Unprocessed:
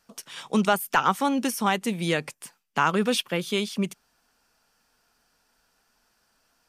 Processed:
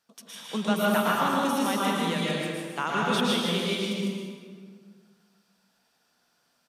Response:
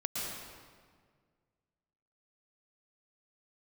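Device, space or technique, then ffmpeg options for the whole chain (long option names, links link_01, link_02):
PA in a hall: -filter_complex "[0:a]highpass=110,equalizer=frequency=3600:width_type=o:width=0.33:gain=6.5,aecho=1:1:152:0.562[link_01];[1:a]atrim=start_sample=2205[link_02];[link_01][link_02]afir=irnorm=-1:irlink=0,volume=-7dB"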